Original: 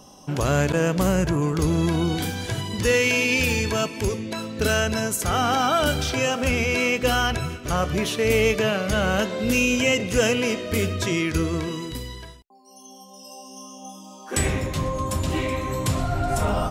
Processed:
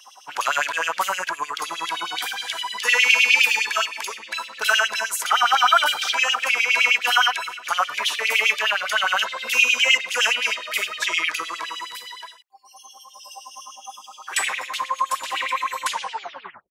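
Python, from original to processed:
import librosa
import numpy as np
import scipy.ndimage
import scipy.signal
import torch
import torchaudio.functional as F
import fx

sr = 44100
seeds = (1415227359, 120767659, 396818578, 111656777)

y = fx.tape_stop_end(x, sr, length_s=0.86)
y = fx.filter_lfo_highpass(y, sr, shape='sine', hz=9.7, low_hz=880.0, high_hz=3300.0, q=4.9)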